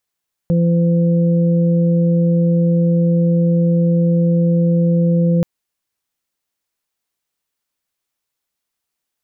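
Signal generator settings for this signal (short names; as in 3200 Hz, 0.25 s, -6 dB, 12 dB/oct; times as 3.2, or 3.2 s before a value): steady additive tone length 4.93 s, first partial 170 Hz, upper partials -16/-9 dB, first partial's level -11.5 dB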